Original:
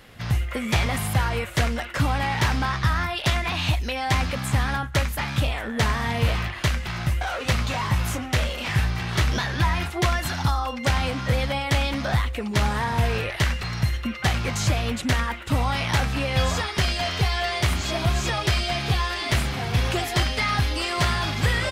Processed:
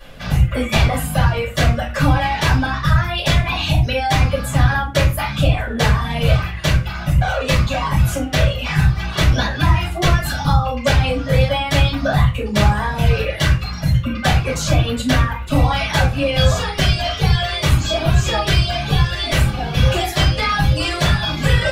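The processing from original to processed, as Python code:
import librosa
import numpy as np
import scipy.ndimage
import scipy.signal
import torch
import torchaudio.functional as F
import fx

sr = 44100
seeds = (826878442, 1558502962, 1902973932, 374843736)

y = fx.dereverb_blind(x, sr, rt60_s=1.9)
y = fx.room_shoebox(y, sr, seeds[0], volume_m3=150.0, walls='furnished', distance_m=5.7)
y = y * librosa.db_to_amplitude(-3.5)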